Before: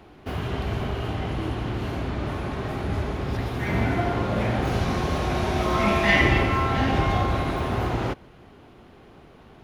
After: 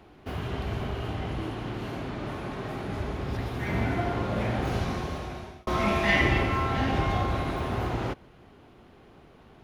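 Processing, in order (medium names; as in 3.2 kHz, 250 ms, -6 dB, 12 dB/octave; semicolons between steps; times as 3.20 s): 1.45–3.00 s: peaking EQ 70 Hz -15 dB 0.54 oct; 4.77–5.67 s: fade out; trim -4 dB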